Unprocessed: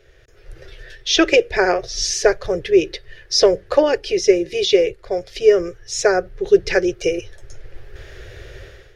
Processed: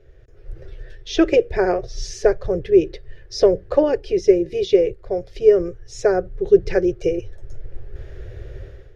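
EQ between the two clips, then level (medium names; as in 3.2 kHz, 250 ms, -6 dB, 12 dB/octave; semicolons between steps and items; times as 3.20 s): tilt shelf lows +7 dB, about 1.1 kHz; bass shelf 240 Hz +4.5 dB; -6.5 dB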